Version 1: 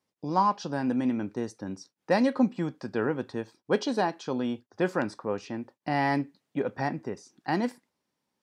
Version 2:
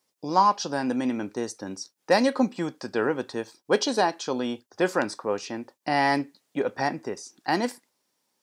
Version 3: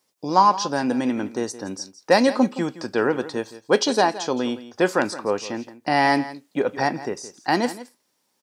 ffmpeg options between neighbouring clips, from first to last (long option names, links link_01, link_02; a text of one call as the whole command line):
ffmpeg -i in.wav -af "bass=frequency=250:gain=-9,treble=frequency=4000:gain=8,volume=4.5dB" out.wav
ffmpeg -i in.wav -af "aecho=1:1:168:0.168,volume=4dB" out.wav